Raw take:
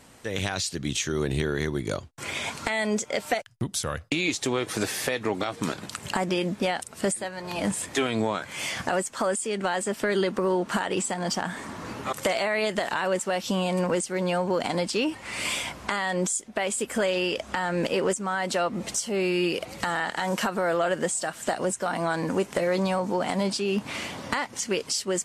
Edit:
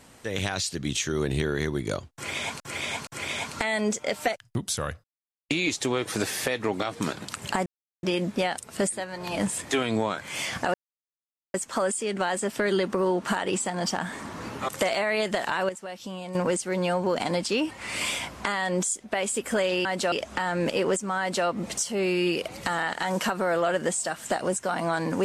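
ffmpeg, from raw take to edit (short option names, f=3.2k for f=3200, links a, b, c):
-filter_complex "[0:a]asplit=10[a][b][c][d][e][f][g][h][i][j];[a]atrim=end=2.602[k];[b]atrim=start=2.128:end=2.602[l];[c]atrim=start=2.128:end=4.1,asetpts=PTS-STARTPTS,afade=t=out:st=1.968:d=0.004:c=hsin,apad=pad_dur=0.45[m];[d]atrim=start=4.1:end=6.27,asetpts=PTS-STARTPTS,afade=t=in:d=0.004:c=hsin,afade=t=out:st=2.166:d=0.004:c=hsin,apad=pad_dur=0.37[n];[e]atrim=start=6.27:end=8.98,asetpts=PTS-STARTPTS,afade=t=in:d=0.004:c=hsin,afade=t=out:st=2.706:d=0.004:c=hsin,apad=pad_dur=0.8[o];[f]atrim=start=8.98:end=13.132,asetpts=PTS-STARTPTS,afade=t=in:d=0.004:c=hsin[p];[g]atrim=start=13.128:end=13.792,asetpts=PTS-STARTPTS,volume=-10.5dB[q];[h]atrim=start=13.788:end=17.292[r];[i]atrim=start=18.358:end=18.632[s];[j]atrim=start=17.288[t];[k][l]acrossfade=d=0.004:c1=hsin:c2=hsin[u];[m][n][o][p]concat=n=4:v=0:a=1[v];[u][v]acrossfade=d=0.004:c1=hsin:c2=hsin[w];[w][q]acrossfade=d=0.004:c1=hsin:c2=hsin[x];[x][r]acrossfade=d=0.004:c1=hsin:c2=hsin[y];[y][s]acrossfade=d=0.004:c1=hsin:c2=hsin[z];[z][t]acrossfade=d=0.004:c1=hsin:c2=hsin"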